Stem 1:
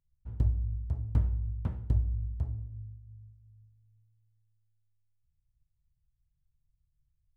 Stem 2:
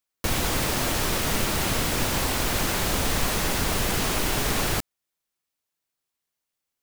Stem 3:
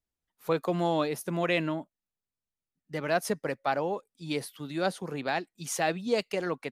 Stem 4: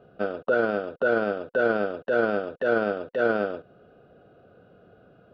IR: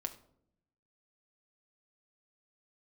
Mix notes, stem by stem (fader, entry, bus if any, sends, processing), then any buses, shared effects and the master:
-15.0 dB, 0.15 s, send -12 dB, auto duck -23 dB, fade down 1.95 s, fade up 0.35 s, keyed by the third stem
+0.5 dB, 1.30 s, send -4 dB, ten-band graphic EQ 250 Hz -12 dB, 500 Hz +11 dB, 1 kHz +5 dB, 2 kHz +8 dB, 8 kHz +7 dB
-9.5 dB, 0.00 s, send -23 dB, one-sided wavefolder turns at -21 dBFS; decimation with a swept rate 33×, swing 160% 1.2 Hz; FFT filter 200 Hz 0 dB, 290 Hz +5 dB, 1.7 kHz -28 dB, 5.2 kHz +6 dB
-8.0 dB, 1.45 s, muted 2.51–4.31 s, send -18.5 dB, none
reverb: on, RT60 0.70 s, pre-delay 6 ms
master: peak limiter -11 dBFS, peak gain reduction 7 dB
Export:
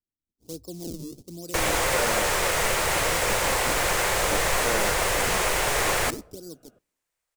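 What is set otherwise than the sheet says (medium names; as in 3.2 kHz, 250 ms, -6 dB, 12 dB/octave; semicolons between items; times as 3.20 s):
stem 1 -15.0 dB -> -26.5 dB; stem 2 +0.5 dB -> -7.5 dB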